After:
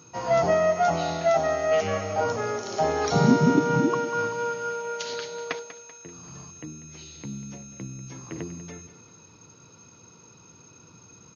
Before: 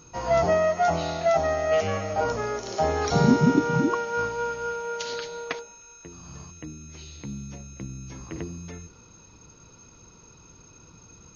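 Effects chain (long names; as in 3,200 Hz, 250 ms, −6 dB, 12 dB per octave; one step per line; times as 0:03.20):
high-pass filter 98 Hz 24 dB per octave
repeating echo 193 ms, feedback 46%, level −14 dB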